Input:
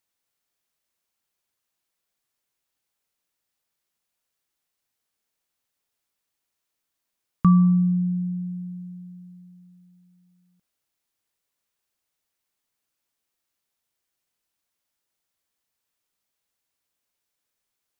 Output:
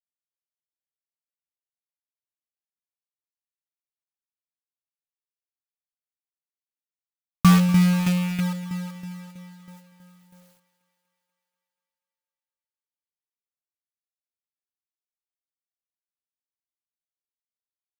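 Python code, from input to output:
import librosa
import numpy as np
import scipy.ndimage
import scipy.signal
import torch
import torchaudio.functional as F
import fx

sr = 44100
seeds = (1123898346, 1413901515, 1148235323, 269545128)

p1 = fx.rattle_buzz(x, sr, strikes_db=-28.0, level_db=-30.0)
p2 = fx.peak_eq(p1, sr, hz=340.0, db=-8.0, octaves=0.59)
p3 = fx.rider(p2, sr, range_db=5, speed_s=0.5)
p4 = p2 + (p3 * 10.0 ** (-2.0 / 20.0))
p5 = fx.quant_companded(p4, sr, bits=4)
p6 = fx.tremolo_shape(p5, sr, shape='saw_down', hz=3.1, depth_pct=65)
y = fx.echo_thinned(p6, sr, ms=242, feedback_pct=67, hz=190.0, wet_db=-17.5)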